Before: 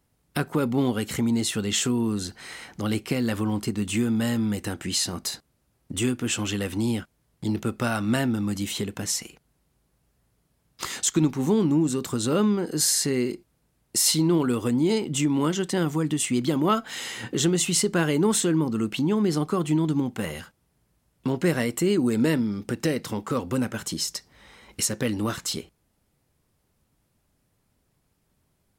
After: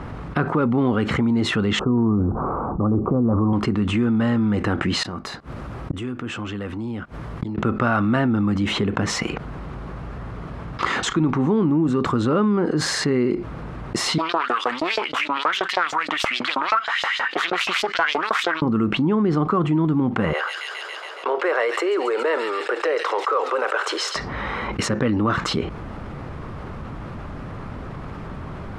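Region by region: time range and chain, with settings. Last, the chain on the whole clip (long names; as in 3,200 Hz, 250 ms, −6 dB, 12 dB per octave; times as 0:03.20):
0:01.79–0:03.53: elliptic low-pass filter 1,200 Hz + spectral tilt −1.5 dB per octave + transient designer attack −2 dB, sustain +7 dB
0:05.03–0:07.58: high-shelf EQ 7,700 Hz +8 dB + gate with flip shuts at −28 dBFS, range −29 dB
0:14.18–0:18.62: phase distortion by the signal itself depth 0.24 ms + auto-filter high-pass saw up 6.3 Hz 630–5,600 Hz
0:20.33–0:24.16: Butterworth high-pass 410 Hz 48 dB per octave + delay with a high-pass on its return 139 ms, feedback 64%, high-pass 3,900 Hz, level −4.5 dB
whole clip: low-pass filter 1,900 Hz 12 dB per octave; parametric band 1,200 Hz +6.5 dB 0.51 octaves; envelope flattener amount 70%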